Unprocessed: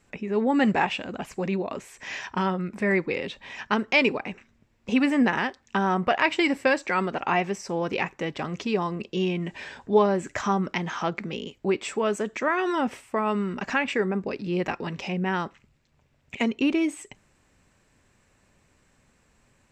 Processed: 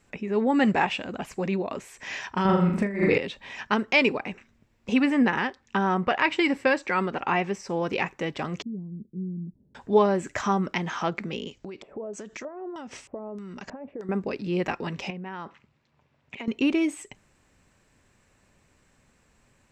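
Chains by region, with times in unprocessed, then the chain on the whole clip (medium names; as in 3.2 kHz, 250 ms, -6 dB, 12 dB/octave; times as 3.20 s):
2.45–3.18 s: bass shelf 310 Hz +8 dB + flutter echo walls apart 6.9 m, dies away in 0.6 s + compressor with a negative ratio -21 dBFS, ratio -0.5
5.00–7.70 s: treble shelf 7.6 kHz -10 dB + band-stop 660 Hz, Q 7.4
8.62–9.75 s: four-pole ladder low-pass 260 Hz, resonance 35% + tape noise reduction on one side only decoder only
11.51–14.09 s: tone controls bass +3 dB, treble +1 dB + compression 16:1, threshold -35 dBFS + LFO low-pass square 1.6 Hz 600–6200 Hz
15.10–16.48 s: compression 10:1, threshold -34 dBFS + band-pass 100–4800 Hz + peaking EQ 1 kHz +4.5 dB 0.66 oct
whole clip: none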